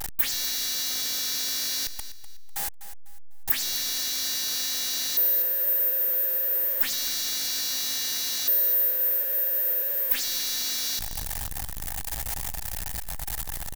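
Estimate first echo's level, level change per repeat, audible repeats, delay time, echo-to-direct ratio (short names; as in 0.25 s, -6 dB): -14.0 dB, -10.5 dB, 3, 0.249 s, -13.5 dB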